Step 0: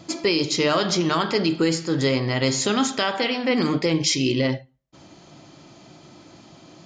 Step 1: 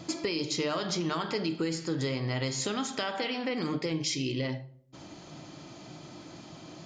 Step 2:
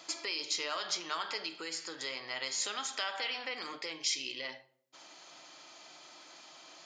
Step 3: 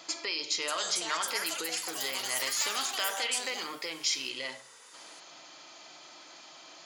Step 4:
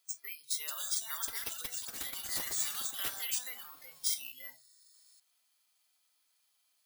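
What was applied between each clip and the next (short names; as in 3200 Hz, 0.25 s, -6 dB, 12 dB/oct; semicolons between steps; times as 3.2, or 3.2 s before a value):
compressor 3:1, threshold -32 dBFS, peak gain reduction 12 dB; shoebox room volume 950 m³, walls furnished, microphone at 0.48 m
Bessel high-pass 1100 Hz, order 2
echoes that change speed 0.619 s, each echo +7 st, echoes 3; gain +3 dB
passive tone stack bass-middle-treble 5-5-5; spectral noise reduction 20 dB; careless resampling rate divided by 3×, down none, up zero stuff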